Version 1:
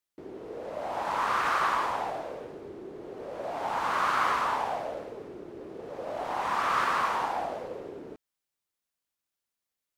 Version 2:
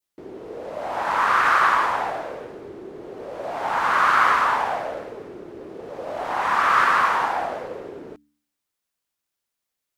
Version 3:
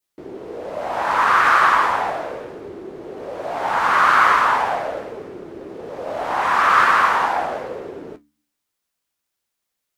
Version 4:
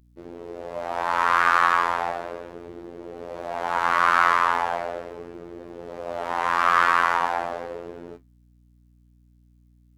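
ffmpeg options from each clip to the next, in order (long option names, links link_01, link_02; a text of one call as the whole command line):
ffmpeg -i in.wav -af "bandreject=frequency=73.4:width_type=h:width=4,bandreject=frequency=146.8:width_type=h:width=4,bandreject=frequency=220.2:width_type=h:width=4,bandreject=frequency=293.6:width_type=h:width=4,adynamicequalizer=threshold=0.00794:dfrequency=1600:dqfactor=1.2:tfrequency=1600:tqfactor=1.2:attack=5:release=100:ratio=0.375:range=3.5:mode=boostabove:tftype=bell,volume=4.5dB" out.wav
ffmpeg -i in.wav -af "flanger=delay=9.9:depth=5.8:regen=-54:speed=1.5:shape=triangular,volume=7.5dB" out.wav
ffmpeg -i in.wav -af "afftfilt=real='hypot(re,im)*cos(PI*b)':imag='0':win_size=2048:overlap=0.75,aeval=exprs='val(0)+0.002*(sin(2*PI*60*n/s)+sin(2*PI*2*60*n/s)/2+sin(2*PI*3*60*n/s)/3+sin(2*PI*4*60*n/s)/4+sin(2*PI*5*60*n/s)/5)':channel_layout=same,volume=-1.5dB" out.wav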